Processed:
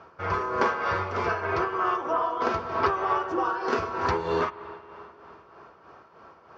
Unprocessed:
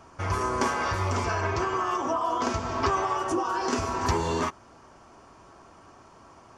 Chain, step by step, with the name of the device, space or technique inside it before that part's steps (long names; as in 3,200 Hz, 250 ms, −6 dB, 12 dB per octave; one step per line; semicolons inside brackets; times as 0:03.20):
combo amplifier with spring reverb and tremolo (spring reverb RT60 3.5 s, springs 46/50 ms, chirp 60 ms, DRR 12 dB; amplitude tremolo 3.2 Hz, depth 55%; loudspeaker in its box 97–4,200 Hz, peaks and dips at 110 Hz −6 dB, 260 Hz −8 dB, 470 Hz +7 dB, 1,400 Hz +6 dB, 3,100 Hz −3 dB)
level +1.5 dB